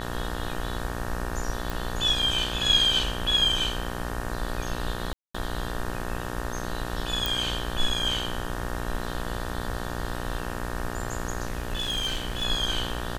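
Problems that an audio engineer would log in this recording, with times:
buzz 60 Hz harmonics 31 -34 dBFS
1.70 s: pop
5.13–5.34 s: dropout 215 ms
7.26 s: pop
11.47–12.45 s: clipped -24 dBFS

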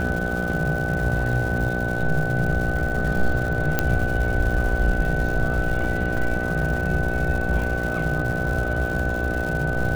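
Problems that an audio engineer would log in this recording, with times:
buzz 60 Hz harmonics 13 -28 dBFS
crackle 260 per s -29 dBFS
whine 1.5 kHz -27 dBFS
3.79 s: pop -5 dBFS
6.17 s: dropout 4.3 ms

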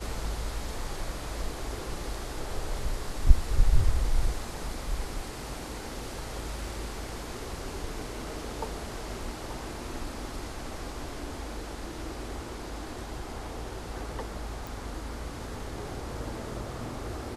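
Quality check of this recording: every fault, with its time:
14.67 s: pop

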